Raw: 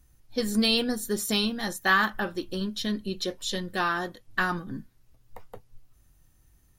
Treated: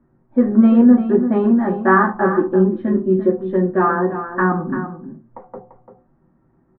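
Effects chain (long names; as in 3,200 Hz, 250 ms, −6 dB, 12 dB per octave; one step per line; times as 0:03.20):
low-pass filter 1,400 Hz 24 dB per octave
single-tap delay 342 ms −10.5 dB
convolution reverb RT60 0.35 s, pre-delay 3 ms, DRR −2 dB
level −2.5 dB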